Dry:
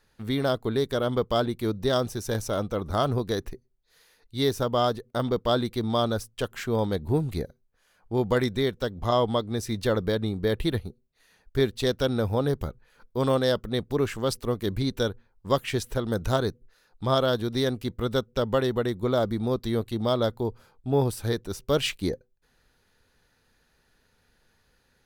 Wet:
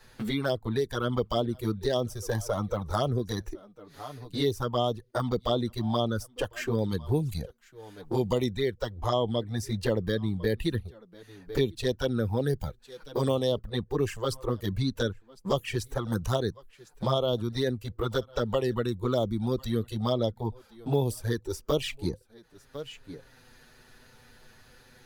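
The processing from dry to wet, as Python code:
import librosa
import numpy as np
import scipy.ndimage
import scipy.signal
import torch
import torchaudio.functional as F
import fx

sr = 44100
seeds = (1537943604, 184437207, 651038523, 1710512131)

y = x + 10.0 ** (-23.0 / 20.0) * np.pad(x, (int(1051 * sr / 1000.0), 0))[:len(x)]
y = fx.env_flanger(y, sr, rest_ms=8.2, full_db=-19.0)
y = fx.noise_reduce_blind(y, sr, reduce_db=7)
y = fx.band_squash(y, sr, depth_pct=70)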